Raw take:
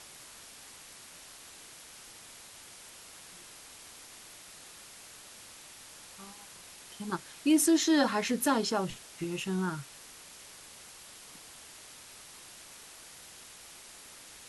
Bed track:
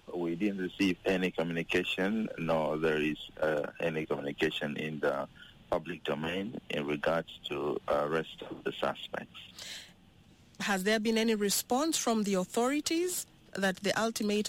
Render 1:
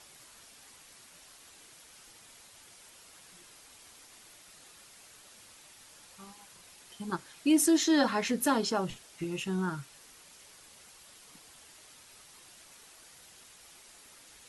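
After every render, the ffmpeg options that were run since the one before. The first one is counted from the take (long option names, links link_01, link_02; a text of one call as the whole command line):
ffmpeg -i in.wav -af "afftdn=noise_reduction=6:noise_floor=-51" out.wav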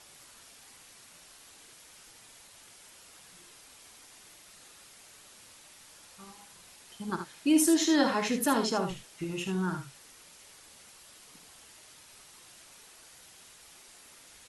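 ffmpeg -i in.wav -af "aecho=1:1:54|77:0.282|0.376" out.wav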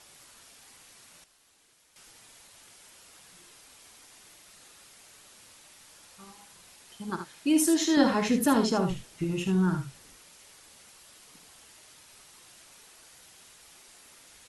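ffmpeg -i in.wav -filter_complex "[0:a]asettb=1/sr,asplit=3[link_01][link_02][link_03];[link_01]atrim=end=7.974[link_04];[link_02]atrim=start=7.97:end=10.17,asetpts=PTS-STARTPTS,afade=type=in:duration=0.004:curve=qsin,afade=type=out:start_time=2.196:duration=0.004:curve=qsin,lowshelf=frequency=290:gain=10[link_05];[link_03]atrim=start=10.166[link_06];[link_04][link_05]acrossfade=duration=0.004:curve1=hsin:curve2=qsin[link_07];[link_07][link_06]acrossfade=duration=0.004:curve1=qsin:curve2=hsin,asplit=3[link_08][link_09][link_10];[link_08]atrim=end=1.242[link_11];[link_09]atrim=start=1.238:end=1.962,asetpts=PTS-STARTPTS,volume=-10dB[link_12];[link_10]atrim=start=1.958[link_13];[link_11][link_12]acrossfade=duration=0.004:curve1=hsin:curve2=hsin[link_14];[link_14][link_13]acrossfade=duration=0.004:curve1=hsin:curve2=hsin" out.wav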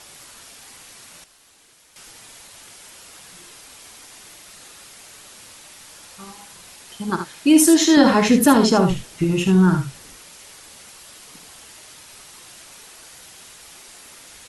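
ffmpeg -i in.wav -af "volume=10.5dB,alimiter=limit=-3dB:level=0:latency=1" out.wav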